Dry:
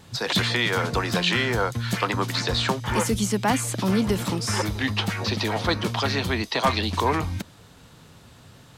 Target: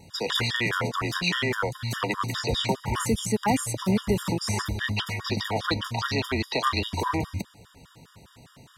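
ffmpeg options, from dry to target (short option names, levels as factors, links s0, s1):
-af "acontrast=50,afftfilt=real='re*gt(sin(2*PI*4.9*pts/sr)*(1-2*mod(floor(b*sr/1024/950),2)),0)':imag='im*gt(sin(2*PI*4.9*pts/sr)*(1-2*mod(floor(b*sr/1024/950),2)),0)':win_size=1024:overlap=0.75,volume=0.531"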